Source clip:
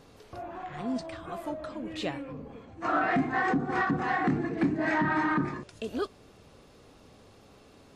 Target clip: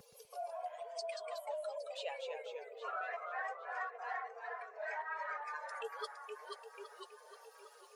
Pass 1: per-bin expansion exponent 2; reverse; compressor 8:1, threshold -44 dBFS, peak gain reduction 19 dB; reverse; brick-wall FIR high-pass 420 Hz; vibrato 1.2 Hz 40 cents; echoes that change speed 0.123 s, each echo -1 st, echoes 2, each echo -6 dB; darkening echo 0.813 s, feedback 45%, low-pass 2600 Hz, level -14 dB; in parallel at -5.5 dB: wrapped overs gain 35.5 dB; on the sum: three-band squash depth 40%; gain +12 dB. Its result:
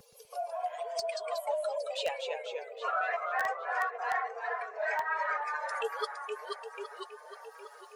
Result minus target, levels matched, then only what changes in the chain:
compressor: peak gain reduction -9.5 dB
change: compressor 8:1, threshold -55 dBFS, peak gain reduction 29 dB

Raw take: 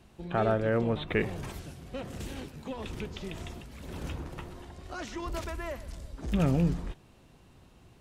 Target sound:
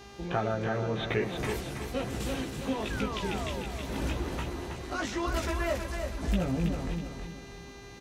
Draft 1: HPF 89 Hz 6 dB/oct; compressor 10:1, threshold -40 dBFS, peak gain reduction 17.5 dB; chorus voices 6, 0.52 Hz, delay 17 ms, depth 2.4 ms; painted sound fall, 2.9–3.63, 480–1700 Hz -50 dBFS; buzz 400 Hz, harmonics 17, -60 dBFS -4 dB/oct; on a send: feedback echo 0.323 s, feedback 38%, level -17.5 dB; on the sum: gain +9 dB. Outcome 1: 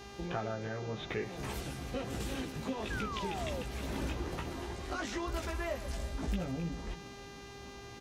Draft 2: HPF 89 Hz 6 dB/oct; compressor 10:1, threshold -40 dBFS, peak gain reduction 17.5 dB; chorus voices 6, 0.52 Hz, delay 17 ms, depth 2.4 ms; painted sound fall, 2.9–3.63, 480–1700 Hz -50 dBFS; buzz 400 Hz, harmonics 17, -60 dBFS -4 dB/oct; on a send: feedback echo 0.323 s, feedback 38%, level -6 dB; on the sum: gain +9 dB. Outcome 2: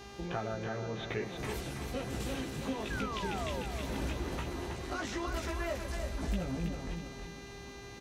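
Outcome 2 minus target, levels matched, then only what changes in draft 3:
compressor: peak gain reduction +7 dB
change: compressor 10:1, threshold -32 dBFS, peak gain reduction 10.5 dB

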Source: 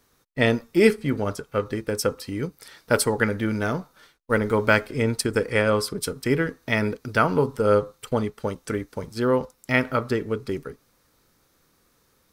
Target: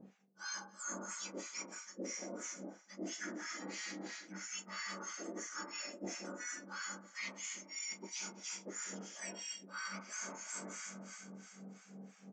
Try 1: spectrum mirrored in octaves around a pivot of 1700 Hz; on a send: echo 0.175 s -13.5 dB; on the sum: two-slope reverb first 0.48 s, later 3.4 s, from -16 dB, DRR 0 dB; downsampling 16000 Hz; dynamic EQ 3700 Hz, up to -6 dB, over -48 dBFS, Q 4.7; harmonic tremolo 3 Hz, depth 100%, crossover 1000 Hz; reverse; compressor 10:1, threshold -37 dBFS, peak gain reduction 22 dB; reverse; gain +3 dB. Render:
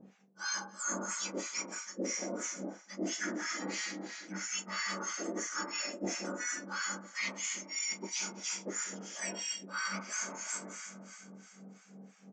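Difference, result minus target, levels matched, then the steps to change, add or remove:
compressor: peak gain reduction -7 dB
change: compressor 10:1, threshold -45 dBFS, peak gain reduction 29.5 dB

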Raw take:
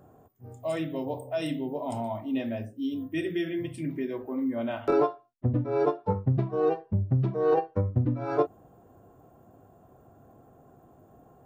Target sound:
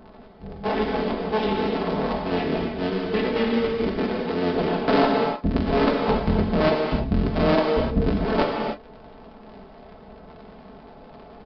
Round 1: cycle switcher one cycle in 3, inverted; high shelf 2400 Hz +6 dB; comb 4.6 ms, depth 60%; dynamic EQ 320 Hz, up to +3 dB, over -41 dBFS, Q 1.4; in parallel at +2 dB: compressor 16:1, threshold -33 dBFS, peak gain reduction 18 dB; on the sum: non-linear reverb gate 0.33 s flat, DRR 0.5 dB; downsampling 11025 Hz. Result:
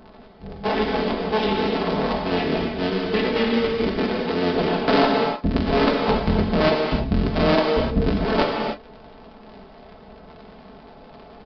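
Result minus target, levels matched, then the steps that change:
compressor: peak gain reduction -6.5 dB; 4000 Hz band +3.5 dB
change: compressor 16:1, threshold -40.5 dBFS, peak gain reduction 24.5 dB; remove: high shelf 2400 Hz +6 dB

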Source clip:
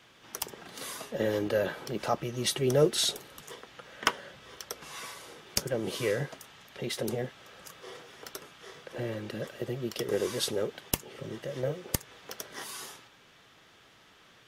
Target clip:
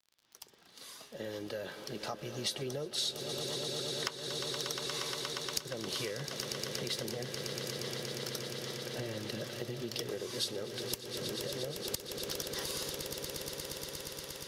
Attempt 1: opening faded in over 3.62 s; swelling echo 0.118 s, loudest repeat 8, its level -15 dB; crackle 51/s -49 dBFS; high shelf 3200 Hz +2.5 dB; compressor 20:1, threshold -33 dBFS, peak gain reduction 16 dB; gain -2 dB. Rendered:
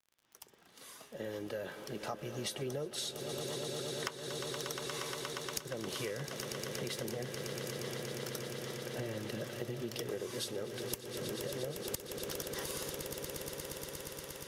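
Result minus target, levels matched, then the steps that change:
4000 Hz band -3.5 dB
add after compressor: bell 4400 Hz +8 dB 0.85 oct

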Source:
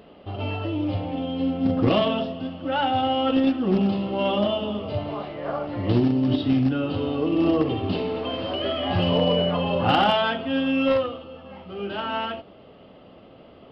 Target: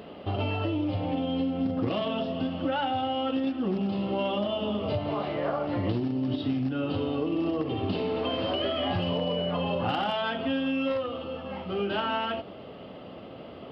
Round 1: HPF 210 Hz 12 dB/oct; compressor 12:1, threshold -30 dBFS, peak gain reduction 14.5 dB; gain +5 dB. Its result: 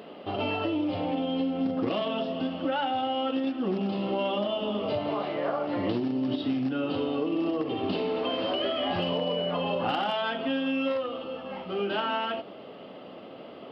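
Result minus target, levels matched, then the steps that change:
125 Hz band -6.0 dB
change: HPF 66 Hz 12 dB/oct

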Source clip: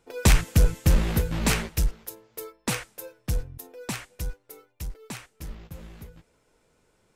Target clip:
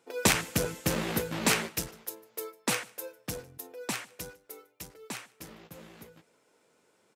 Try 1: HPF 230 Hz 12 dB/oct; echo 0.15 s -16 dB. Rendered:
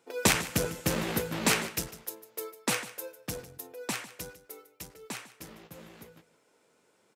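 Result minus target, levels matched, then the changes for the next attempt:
echo-to-direct +9.5 dB
change: echo 0.15 s -25.5 dB

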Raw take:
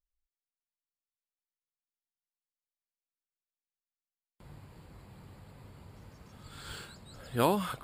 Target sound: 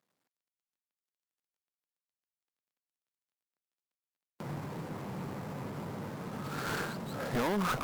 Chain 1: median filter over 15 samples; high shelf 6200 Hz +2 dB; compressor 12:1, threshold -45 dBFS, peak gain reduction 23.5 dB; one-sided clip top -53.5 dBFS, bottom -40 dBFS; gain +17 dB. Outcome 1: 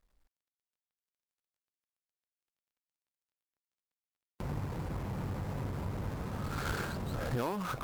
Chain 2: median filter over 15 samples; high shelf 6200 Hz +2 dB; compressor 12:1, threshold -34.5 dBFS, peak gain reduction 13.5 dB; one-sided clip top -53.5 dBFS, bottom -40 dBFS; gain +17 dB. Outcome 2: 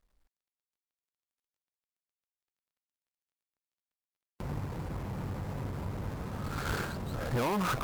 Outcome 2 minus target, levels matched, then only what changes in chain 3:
125 Hz band +3.0 dB
add after median filter: HPF 140 Hz 24 dB/oct

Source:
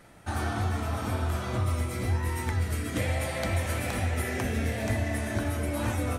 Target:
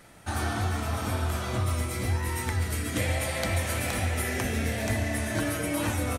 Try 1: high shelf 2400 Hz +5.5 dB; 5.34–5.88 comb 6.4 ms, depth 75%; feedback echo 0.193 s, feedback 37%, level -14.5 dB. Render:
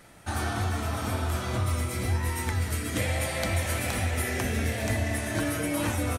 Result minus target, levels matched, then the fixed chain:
echo 53 ms late
high shelf 2400 Hz +5.5 dB; 5.34–5.88 comb 6.4 ms, depth 75%; feedback echo 0.14 s, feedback 37%, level -14.5 dB

